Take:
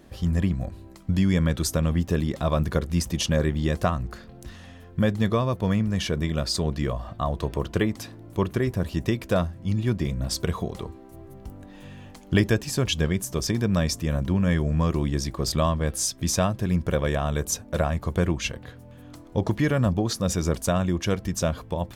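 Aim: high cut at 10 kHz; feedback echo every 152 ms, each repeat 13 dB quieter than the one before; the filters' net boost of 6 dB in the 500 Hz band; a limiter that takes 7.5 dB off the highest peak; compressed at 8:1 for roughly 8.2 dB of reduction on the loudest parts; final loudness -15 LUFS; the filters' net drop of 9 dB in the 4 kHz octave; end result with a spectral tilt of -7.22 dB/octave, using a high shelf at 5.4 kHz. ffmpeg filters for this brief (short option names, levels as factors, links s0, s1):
-af "lowpass=10000,equalizer=f=500:t=o:g=7.5,equalizer=f=4000:t=o:g=-8.5,highshelf=f=5400:g=-8.5,acompressor=threshold=0.0794:ratio=8,alimiter=limit=0.106:level=0:latency=1,aecho=1:1:152|304|456:0.224|0.0493|0.0108,volume=5.96"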